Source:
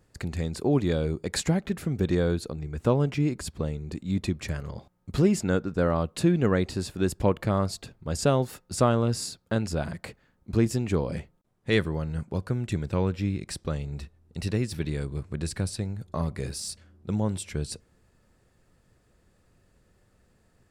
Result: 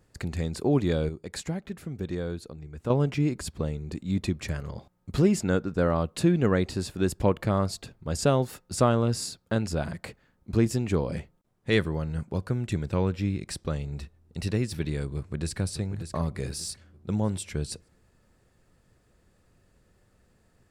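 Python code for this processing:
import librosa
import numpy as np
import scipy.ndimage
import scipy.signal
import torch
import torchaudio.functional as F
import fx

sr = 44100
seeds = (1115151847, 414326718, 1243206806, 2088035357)

y = fx.echo_throw(x, sr, start_s=15.16, length_s=0.43, ms=590, feedback_pct=35, wet_db=-9.0)
y = fx.edit(y, sr, fx.clip_gain(start_s=1.09, length_s=1.81, db=-7.5), tone=tone)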